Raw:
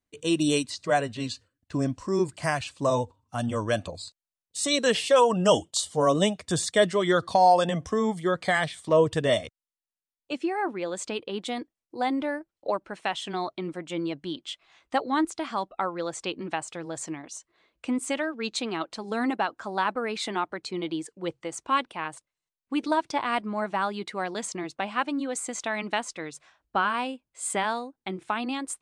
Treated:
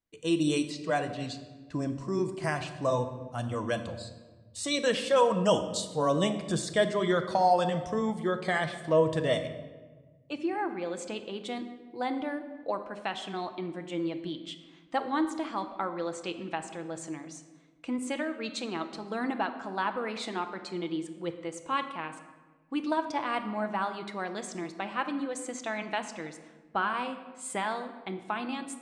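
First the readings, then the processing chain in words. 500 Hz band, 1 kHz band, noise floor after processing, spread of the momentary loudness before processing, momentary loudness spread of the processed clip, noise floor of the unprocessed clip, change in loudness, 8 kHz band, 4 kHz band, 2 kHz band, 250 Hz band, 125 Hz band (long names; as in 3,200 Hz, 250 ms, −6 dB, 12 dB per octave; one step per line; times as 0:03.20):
−3.5 dB, −4.5 dB, −56 dBFS, 13 LU, 13 LU, below −85 dBFS, −4.0 dB, −7.5 dB, −5.5 dB, −4.0 dB, −3.0 dB, −2.5 dB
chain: high-shelf EQ 5,400 Hz −5 dB
rectangular room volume 1,100 cubic metres, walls mixed, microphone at 0.71 metres
level −4.5 dB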